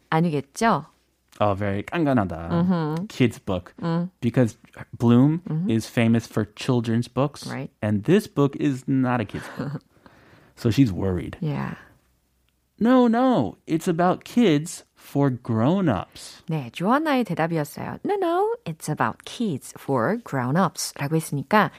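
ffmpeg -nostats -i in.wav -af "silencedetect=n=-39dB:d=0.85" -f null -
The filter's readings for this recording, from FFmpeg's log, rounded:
silence_start: 11.83
silence_end: 12.81 | silence_duration: 0.97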